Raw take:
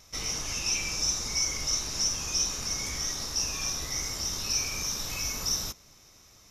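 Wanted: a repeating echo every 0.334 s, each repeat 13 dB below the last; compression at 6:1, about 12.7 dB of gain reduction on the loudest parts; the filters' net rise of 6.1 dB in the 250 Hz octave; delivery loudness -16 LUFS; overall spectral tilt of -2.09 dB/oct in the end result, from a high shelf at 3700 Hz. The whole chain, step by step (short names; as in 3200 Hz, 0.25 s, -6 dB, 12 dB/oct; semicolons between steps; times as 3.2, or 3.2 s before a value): bell 250 Hz +8 dB; high shelf 3700 Hz -7 dB; compressor 6:1, threshold -42 dBFS; feedback echo 0.334 s, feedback 22%, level -13 dB; gain +27 dB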